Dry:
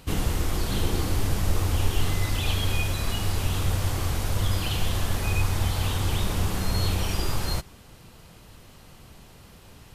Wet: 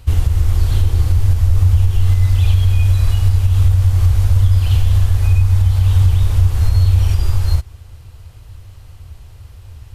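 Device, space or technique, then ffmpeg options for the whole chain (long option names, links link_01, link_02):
car stereo with a boomy subwoofer: -af "lowshelf=frequency=130:width_type=q:width=3:gain=12,alimiter=limit=-4dB:level=0:latency=1:release=169"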